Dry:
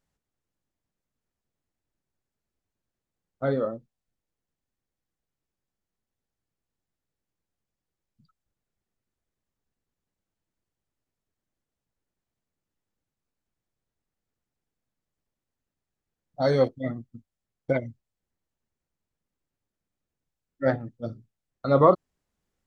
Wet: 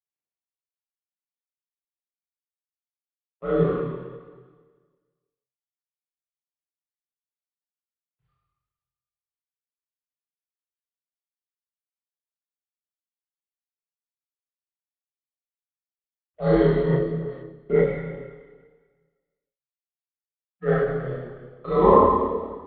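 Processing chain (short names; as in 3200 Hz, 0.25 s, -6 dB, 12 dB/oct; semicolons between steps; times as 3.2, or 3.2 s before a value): G.711 law mismatch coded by A; Schroeder reverb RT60 1.5 s, combs from 27 ms, DRR -7.5 dB; mistuned SSB -99 Hz 200–3400 Hz; chorus voices 6, 1.2 Hz, delay 26 ms, depth 3 ms; ending taper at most 170 dB/s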